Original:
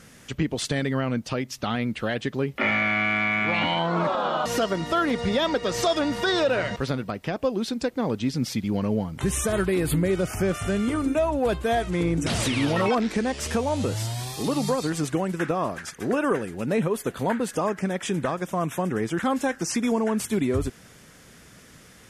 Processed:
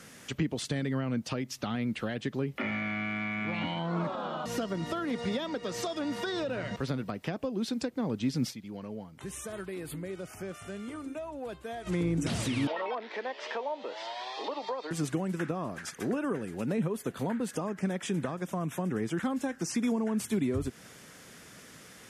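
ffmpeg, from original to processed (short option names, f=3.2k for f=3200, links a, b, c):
-filter_complex "[0:a]asettb=1/sr,asplit=3[a][b][c];[a]atrim=end=5.044[d];[b]atrim=start=5.04:end=6.37,asetpts=PTS-STARTPTS,afade=t=in:d=0.004:c=qsin,afade=t=out:st=1.326:d=0.004:c=qsin,lowshelf=f=110:g=-11.5[e];[c]atrim=start=6.366[f];[d][e]acrossfade=d=0.004:c1=hsin:c2=qsin[g];[g][f]acrossfade=d=0.004:c1=qsin:c2=hsin,asettb=1/sr,asplit=3[h][i][j];[h]atrim=end=12.674[k];[i]atrim=start=12.67:end=14.91,asetpts=PTS-STARTPTS,afade=t=in:d=0.004:c=qsin,afade=t=out:st=2.236:d=0.004:c=qsin,highpass=f=420:w=0.5412,highpass=f=420:w=1.3066,equalizer=f=620:t=q:w=4:g=6,equalizer=f=940:t=q:w=4:g=9,equalizer=f=1.9k:t=q:w=4:g=5,equalizer=f=3.3k:t=q:w=4:g=3,lowpass=f=4.4k:w=0.5412,lowpass=f=4.4k:w=1.3066[l];[j]atrim=start=14.906[m];[k][l]acrossfade=d=0.004:c1=hsin:c2=qsin[n];[n][m]acrossfade=d=0.004:c1=qsin:c2=hsin,asplit=3[o][p][q];[o]atrim=end=8.63,asetpts=PTS-STARTPTS,afade=t=out:st=8.5:d=0.13:c=exp:silence=0.211349[r];[p]atrim=start=8.63:end=11.74,asetpts=PTS-STARTPTS,volume=-13.5dB[s];[q]atrim=start=11.74,asetpts=PTS-STARTPTS,afade=t=in:d=0.13:c=exp:silence=0.211349[t];[r][s][t]concat=n=3:v=0:a=1,highpass=f=180:p=1,acrossover=split=270[u][v];[v]acompressor=threshold=-36dB:ratio=4[w];[u][w]amix=inputs=2:normalize=0"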